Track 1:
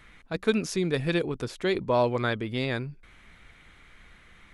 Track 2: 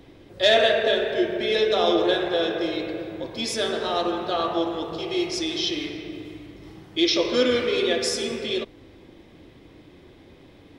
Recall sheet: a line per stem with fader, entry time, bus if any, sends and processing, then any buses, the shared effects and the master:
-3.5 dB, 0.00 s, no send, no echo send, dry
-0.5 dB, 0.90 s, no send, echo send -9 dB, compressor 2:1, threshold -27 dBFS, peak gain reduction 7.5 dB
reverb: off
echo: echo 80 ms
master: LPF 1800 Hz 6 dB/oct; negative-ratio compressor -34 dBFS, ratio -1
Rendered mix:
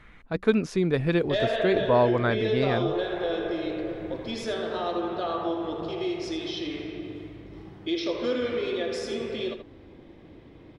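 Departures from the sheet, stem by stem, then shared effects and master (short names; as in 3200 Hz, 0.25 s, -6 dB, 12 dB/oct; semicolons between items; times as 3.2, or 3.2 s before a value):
stem 1 -3.5 dB -> +3.0 dB; master: missing negative-ratio compressor -34 dBFS, ratio -1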